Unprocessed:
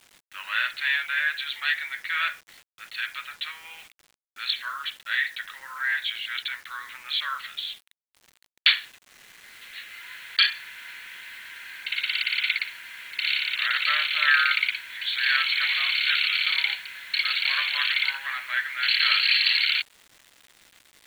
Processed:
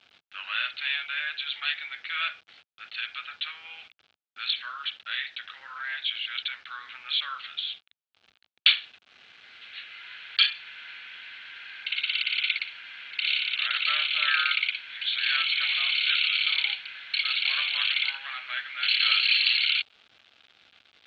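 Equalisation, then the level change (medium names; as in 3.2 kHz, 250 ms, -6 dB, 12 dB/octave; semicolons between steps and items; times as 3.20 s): peaking EQ 370 Hz -5 dB 1.2 oct; dynamic bell 1.6 kHz, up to -6 dB, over -37 dBFS, Q 2.1; cabinet simulation 110–3800 Hz, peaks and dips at 130 Hz -9 dB, 190 Hz -7 dB, 300 Hz -4 dB, 560 Hz -4 dB, 1 kHz -10 dB, 1.9 kHz -10 dB; +3.0 dB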